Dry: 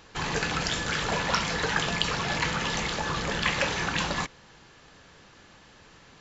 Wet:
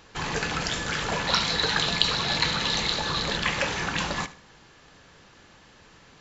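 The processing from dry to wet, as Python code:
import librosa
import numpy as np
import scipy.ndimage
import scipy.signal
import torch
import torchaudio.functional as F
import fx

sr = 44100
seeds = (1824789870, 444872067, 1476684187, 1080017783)

y = fx.peak_eq(x, sr, hz=4000.0, db=14.0, octaves=0.33, at=(1.27, 3.37))
y = fx.echo_feedback(y, sr, ms=75, feedback_pct=29, wet_db=-16.5)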